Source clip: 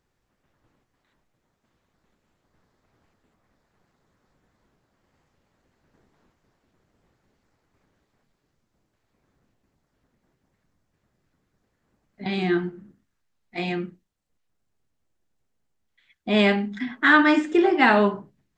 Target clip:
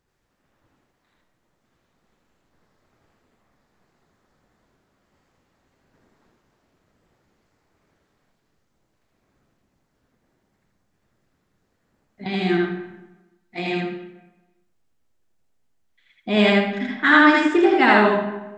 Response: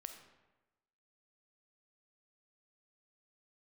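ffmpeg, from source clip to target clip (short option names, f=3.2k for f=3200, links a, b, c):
-filter_complex "[0:a]asplit=2[a][b];[1:a]atrim=start_sample=2205,lowshelf=f=110:g=-12,adelay=81[c];[b][c]afir=irnorm=-1:irlink=0,volume=5.5dB[d];[a][d]amix=inputs=2:normalize=0"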